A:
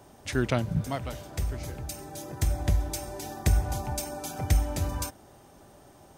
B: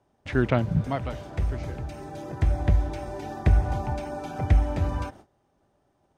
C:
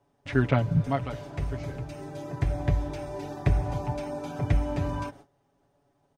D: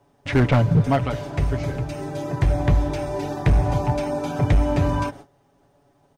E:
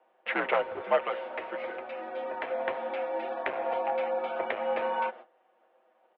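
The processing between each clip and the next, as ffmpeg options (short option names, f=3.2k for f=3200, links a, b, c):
-filter_complex "[0:a]acrossover=split=3200[a][b];[b]acompressor=threshold=-50dB:ratio=4:attack=1:release=60[c];[a][c]amix=inputs=2:normalize=0,agate=range=-19dB:threshold=-49dB:ratio=16:detection=peak,aemphasis=mode=reproduction:type=50fm,volume=3.5dB"
-af "aecho=1:1:7.1:0.69,volume=-2.5dB"
-af "volume=20.5dB,asoftclip=hard,volume=-20.5dB,volume=9dB"
-af "highpass=f=540:t=q:w=0.5412,highpass=f=540:t=q:w=1.307,lowpass=f=3.1k:t=q:w=0.5176,lowpass=f=3.1k:t=q:w=0.7071,lowpass=f=3.1k:t=q:w=1.932,afreqshift=-63,volume=-1.5dB"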